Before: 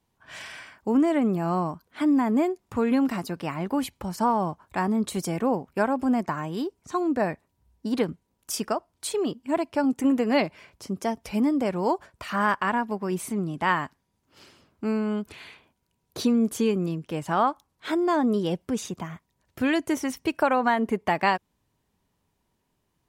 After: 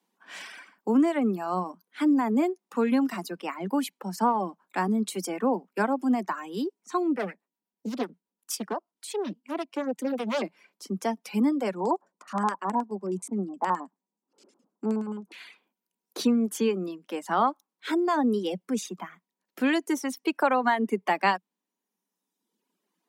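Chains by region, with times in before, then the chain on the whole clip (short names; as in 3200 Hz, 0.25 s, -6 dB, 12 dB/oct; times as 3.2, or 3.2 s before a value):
7.14–10.42 harmonic tremolo 8.3 Hz, crossover 500 Hz + hard clip -20 dBFS + Doppler distortion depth 0.85 ms
11.75–15.32 bell 2900 Hz -13.5 dB 2.6 oct + LFO low-pass square 9.5 Hz 920–7500 Hz
whole clip: steep high-pass 180 Hz 96 dB/oct; notch 630 Hz, Q 12; reverb removal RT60 1.3 s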